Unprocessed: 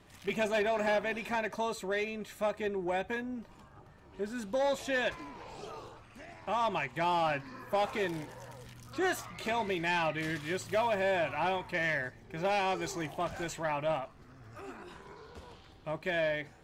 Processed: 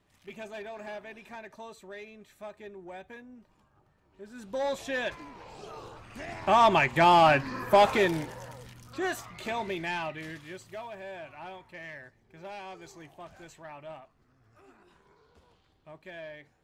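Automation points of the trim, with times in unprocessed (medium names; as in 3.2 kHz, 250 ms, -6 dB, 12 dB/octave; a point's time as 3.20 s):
4.21 s -11 dB
4.61 s -0.5 dB
5.65 s -0.5 dB
6.33 s +10.5 dB
7.83 s +10.5 dB
8.90 s -0.5 dB
9.76 s -0.5 dB
10.89 s -12 dB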